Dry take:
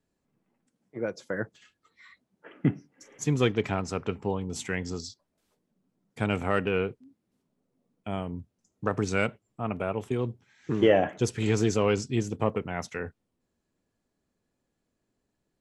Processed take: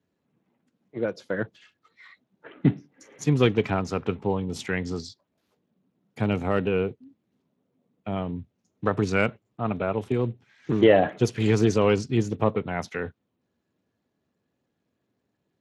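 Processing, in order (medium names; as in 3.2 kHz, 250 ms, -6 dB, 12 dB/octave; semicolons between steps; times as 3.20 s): 5.02–8.16 s: dynamic bell 1.7 kHz, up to -6 dB, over -43 dBFS, Q 0.71; trim +3.5 dB; Speex 24 kbps 32 kHz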